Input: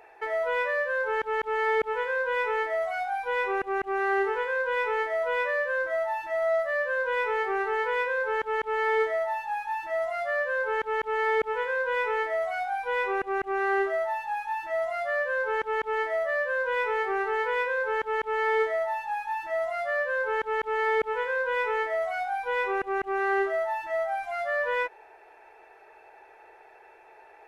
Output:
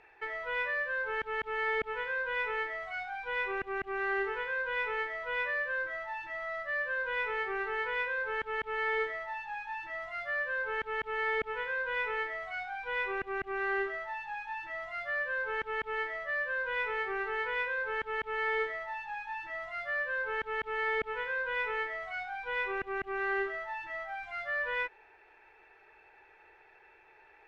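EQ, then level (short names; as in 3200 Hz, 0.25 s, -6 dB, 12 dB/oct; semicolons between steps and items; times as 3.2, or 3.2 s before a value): LPF 3200 Hz 12 dB/oct; bell 640 Hz -14.5 dB 2.3 oct; notch 670 Hz, Q 14; +3.0 dB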